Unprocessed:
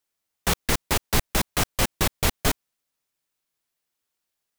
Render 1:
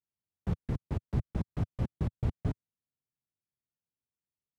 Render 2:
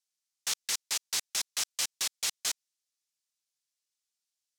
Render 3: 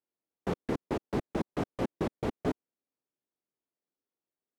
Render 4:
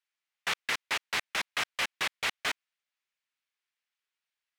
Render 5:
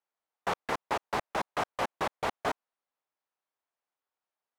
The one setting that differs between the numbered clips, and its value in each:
band-pass, frequency: 110, 6000, 320, 2200, 840 Hz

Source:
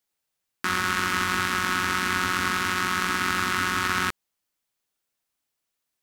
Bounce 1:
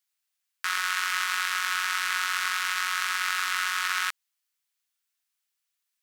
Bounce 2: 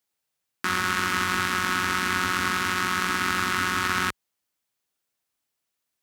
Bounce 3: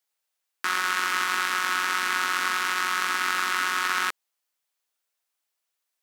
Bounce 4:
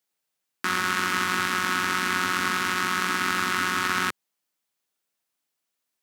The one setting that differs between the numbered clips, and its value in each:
HPF, cutoff: 1400, 45, 520, 140 Hz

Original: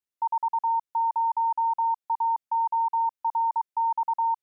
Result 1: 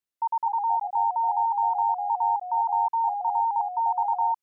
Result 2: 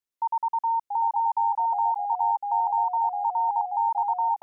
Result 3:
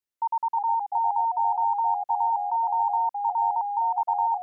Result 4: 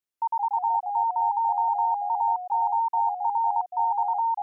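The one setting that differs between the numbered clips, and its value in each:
echoes that change speed, time: 0.214, 0.657, 0.321, 0.145 s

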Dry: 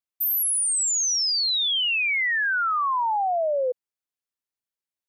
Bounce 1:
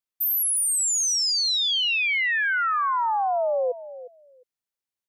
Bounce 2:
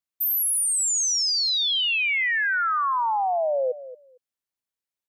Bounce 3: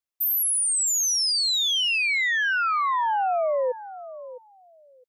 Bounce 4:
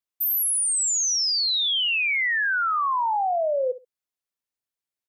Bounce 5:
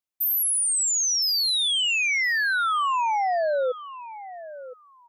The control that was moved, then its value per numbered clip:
feedback echo, time: 356, 228, 660, 64, 1015 ms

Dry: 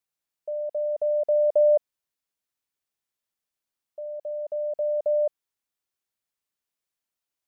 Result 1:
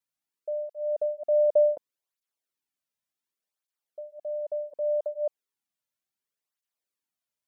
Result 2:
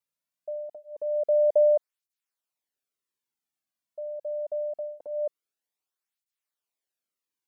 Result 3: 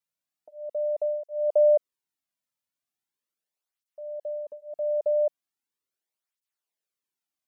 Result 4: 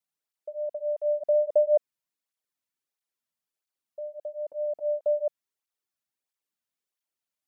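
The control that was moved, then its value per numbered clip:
tape flanging out of phase, nulls at: 0.68, 0.24, 0.39, 1.5 Hz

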